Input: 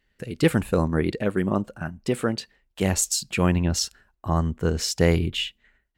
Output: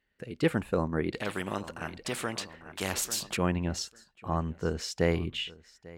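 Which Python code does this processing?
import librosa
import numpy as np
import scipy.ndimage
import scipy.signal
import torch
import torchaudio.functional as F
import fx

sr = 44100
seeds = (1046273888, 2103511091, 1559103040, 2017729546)

y = fx.highpass(x, sr, hz=1400.0, slope=6)
y = fx.tilt_eq(y, sr, slope=-4.0)
y = fx.echo_feedback(y, sr, ms=845, feedback_pct=25, wet_db=-21.5)
y = fx.spectral_comp(y, sr, ratio=2.0, at=(1.14, 3.37))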